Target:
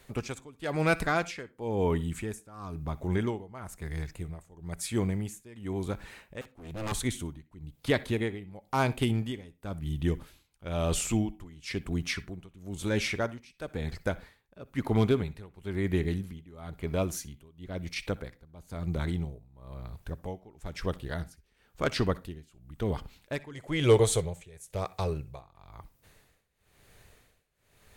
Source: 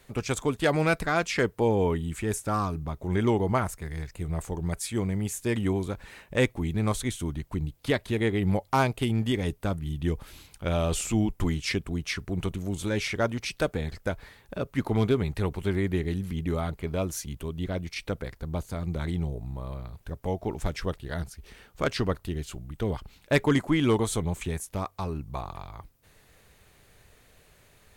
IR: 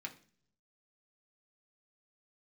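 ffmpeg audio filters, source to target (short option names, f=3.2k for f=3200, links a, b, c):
-filter_complex "[0:a]asettb=1/sr,asplit=3[a][b][c];[a]atrim=end=6.414[d];[b]atrim=start=6.41:end=6.92,asetpts=PTS-STARTPTS,afade=t=in:d=0.004:c=qsin,afade=t=out:st=0.506:d=0.004:c=qsin,aeval=exprs='0.0473*(abs(mod(val(0)/0.0473+3,4)-2)-1)':c=same[e];[c]atrim=start=6.916[f];[d][e]acrossfade=d=0.004:c1=hsin:c2=qsin[g];[g][f]acrossfade=d=0.004:c1=qsin:c2=hsin,tremolo=f=1:d=0.93,asettb=1/sr,asplit=3[h][i][j];[h]atrim=end=23.534[k];[i]atrim=start=23.53:end=25.4,asetpts=PTS-STARTPTS,afade=t=in:d=0.004:c=qsin,afade=t=out:st=1.866:d=0.004:c=qsin,equalizer=f=125:t=o:w=1:g=6,equalizer=f=250:t=o:w=1:g=-11,equalizer=f=500:t=o:w=1:g=11,equalizer=f=1k:t=o:w=1:g=-5,equalizer=f=2k:t=o:w=1:g=3,equalizer=f=4k:t=o:w=1:g=3,equalizer=f=8k:t=o:w=1:g=4[l];[j]atrim=start=25.396[m];[k][l]acrossfade=d=0.004:c1=hsin:c2=qsin[n];[n][m]acrossfade=d=0.004:c1=qsin:c2=hsin,asplit=2[o][p];[1:a]atrim=start_sample=2205,atrim=end_sample=3969,adelay=61[q];[p][q]afir=irnorm=-1:irlink=0,volume=-16dB[r];[o][r]amix=inputs=2:normalize=0"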